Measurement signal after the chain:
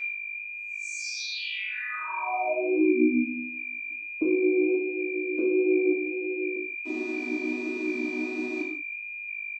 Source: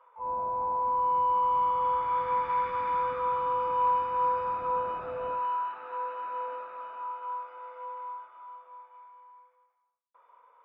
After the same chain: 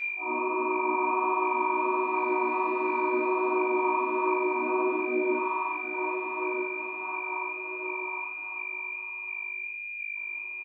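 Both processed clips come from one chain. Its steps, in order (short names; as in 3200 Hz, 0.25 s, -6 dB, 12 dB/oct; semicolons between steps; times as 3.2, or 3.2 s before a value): chord vocoder major triad, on B3; resonant low shelf 490 Hz +8.5 dB, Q 1.5; comb 3 ms, depth 70%; compressor 4:1, threshold -24 dBFS; whine 2400 Hz -31 dBFS; flange 1.4 Hz, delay 5.4 ms, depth 7.7 ms, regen +30%; non-linear reverb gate 0.2 s falling, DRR -4 dB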